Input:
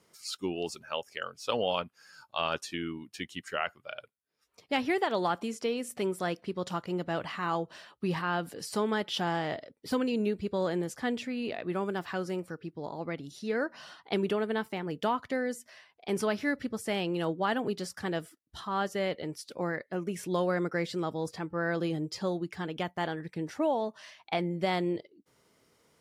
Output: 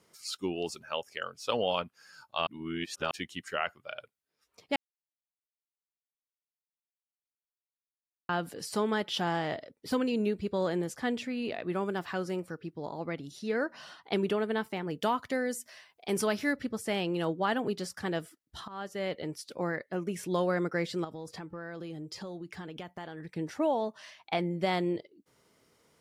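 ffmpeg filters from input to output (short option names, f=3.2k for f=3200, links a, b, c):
-filter_complex "[0:a]asettb=1/sr,asplit=3[a][b][c];[a]atrim=end=15.014[d];[b]atrim=start=15.01:end=16.53,asetpts=PTS-STARTPTS,afade=t=in:d=0.004:c=qsin,afade=t=out:st=1.516:d=0.004:c=qsin,highshelf=f=5.7k:g=8.5[e];[c]atrim=start=16.526[f];[d][e]acrossfade=d=0.004:c1=hsin:c2=qsin[g];[g][f]acrossfade=d=0.004:c1=qsin:c2=hsin,asettb=1/sr,asplit=3[h][i][j];[h]atrim=end=21.044[k];[i]atrim=start=21.04:end=23.32,asetpts=PTS-STARTPTS,afade=t=in:d=0.004:c=qsin,afade=t=out:st=2.276:d=0.004:c=qsin,acompressor=threshold=-38dB:ratio=5:attack=3.2:release=140:knee=1:detection=peak[l];[j]atrim=start=23.316[m];[k][l]acrossfade=d=0.004:c1=hsin:c2=qsin[n];[n][m]acrossfade=d=0.004:c1=qsin:c2=hsin,asplit=6[o][p][q][r][s][t];[o]atrim=end=2.472[u];[p]atrim=start=2.468:end=3.112,asetpts=PTS-STARTPTS,areverse[v];[q]atrim=start=3.108:end=4.76,asetpts=PTS-STARTPTS,afade=t=out:st=1.648:d=0.004:c=hsin[w];[r]atrim=start=4.76:end=8.29,asetpts=PTS-STARTPTS,volume=0[x];[s]atrim=start=8.29:end=18.68,asetpts=PTS-STARTPTS,afade=t=in:d=0.004:c=hsin,afade=t=out:st=10.386:d=0.004:c=hsin:silence=0.16788[y];[t]atrim=start=18.68,asetpts=PTS-STARTPTS,afade=t=in:d=0.55:silence=0.16788[z];[u][v]acrossfade=d=0.004:c1=hsin:c2=hsin[aa];[w][x][y][z]concat=n=4:v=0:a=1[ab];[aa][ab]acrossfade=d=0.004:c1=hsin:c2=hsin"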